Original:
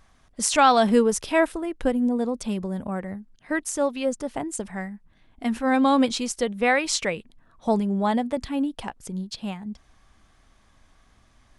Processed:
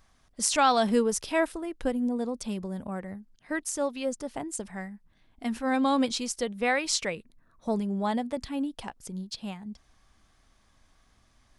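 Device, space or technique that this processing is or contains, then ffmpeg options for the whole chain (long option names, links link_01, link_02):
presence and air boost: -filter_complex "[0:a]equalizer=frequency=4900:width_type=o:width=0.77:gain=3.5,highshelf=frequency=9700:gain=5.5,asettb=1/sr,asplit=3[link_01][link_02][link_03];[link_01]atrim=end=7.154[link_04];[link_02]atrim=start=7.15:end=7.77,asetpts=PTS-STARTPTS,afade=type=in:duration=0.004:curve=qsin,afade=type=out:start_time=0.616:duration=0.004:curve=qsin,equalizer=frequency=800:width_type=o:width=0.33:gain=-8,equalizer=frequency=3150:width_type=o:width=0.33:gain=-11,equalizer=frequency=5000:width_type=o:width=0.33:gain=-6,equalizer=frequency=8000:width_type=o:width=0.33:gain=-4[link_05];[link_03]atrim=start=7.766[link_06];[link_04][link_05]acrossfade=duration=0.004:curve1=hsin:curve2=qsin[link_07];[link_07][link_06]acrossfade=duration=0.004:curve1=qsin:curve2=hsin,volume=-5.5dB"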